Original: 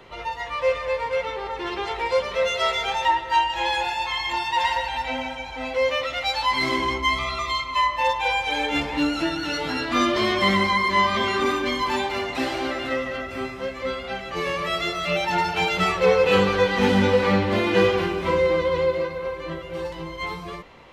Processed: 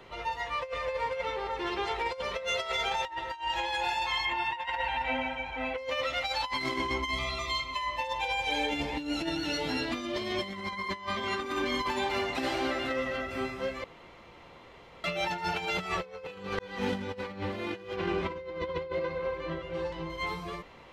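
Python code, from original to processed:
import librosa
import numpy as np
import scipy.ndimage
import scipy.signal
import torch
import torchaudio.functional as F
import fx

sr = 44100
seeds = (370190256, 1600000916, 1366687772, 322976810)

y = fx.high_shelf_res(x, sr, hz=3600.0, db=-10.0, q=1.5, at=(4.25, 5.78))
y = fx.peak_eq(y, sr, hz=1300.0, db=-8.0, octaves=0.77, at=(7.04, 10.53))
y = fx.bessel_lowpass(y, sr, hz=4600.0, order=2, at=(17.96, 20.1))
y = fx.edit(y, sr, fx.room_tone_fill(start_s=13.84, length_s=1.2),
    fx.fade_in_span(start_s=16.59, length_s=0.62), tone=tone)
y = fx.over_compress(y, sr, threshold_db=-25.0, ratio=-0.5)
y = y * librosa.db_to_amplitude(-6.5)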